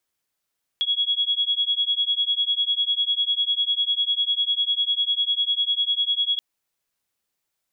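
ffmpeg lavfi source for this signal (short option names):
-f lavfi -i "aevalsrc='0.0708*(sin(2*PI*3330*t)+sin(2*PI*3340*t))':d=5.58:s=44100"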